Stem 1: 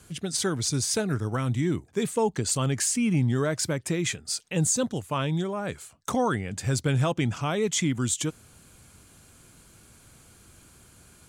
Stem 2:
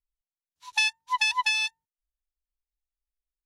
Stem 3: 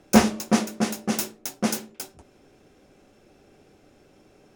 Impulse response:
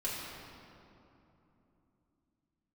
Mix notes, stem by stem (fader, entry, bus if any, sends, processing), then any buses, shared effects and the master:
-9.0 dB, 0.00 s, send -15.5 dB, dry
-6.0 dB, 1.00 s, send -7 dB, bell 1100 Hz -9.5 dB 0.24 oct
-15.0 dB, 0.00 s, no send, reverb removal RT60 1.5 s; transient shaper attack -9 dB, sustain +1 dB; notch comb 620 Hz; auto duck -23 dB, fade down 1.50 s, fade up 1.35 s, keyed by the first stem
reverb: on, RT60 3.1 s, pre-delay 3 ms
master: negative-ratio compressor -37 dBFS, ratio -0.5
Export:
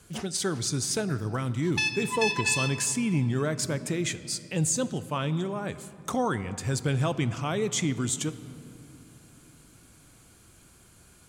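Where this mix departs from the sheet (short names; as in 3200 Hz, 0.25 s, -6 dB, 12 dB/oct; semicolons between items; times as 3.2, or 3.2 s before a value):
stem 1 -9.0 dB -> -3.0 dB; stem 3: missing notch comb 620 Hz; master: missing negative-ratio compressor -37 dBFS, ratio -0.5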